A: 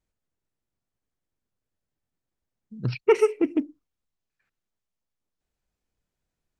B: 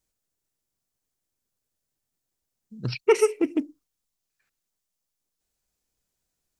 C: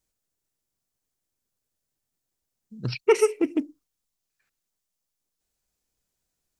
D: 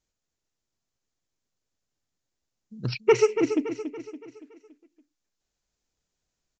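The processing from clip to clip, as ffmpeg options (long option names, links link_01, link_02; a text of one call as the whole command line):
ffmpeg -i in.wav -af "bass=frequency=250:gain=-3,treble=frequency=4000:gain=11" out.wav
ffmpeg -i in.wav -af anull out.wav
ffmpeg -i in.wav -filter_complex "[0:a]asplit=2[link_01][link_02];[link_02]aecho=0:1:283|566|849|1132|1415:0.335|0.154|0.0709|0.0326|0.015[link_03];[link_01][link_03]amix=inputs=2:normalize=0,aresample=16000,aresample=44100" out.wav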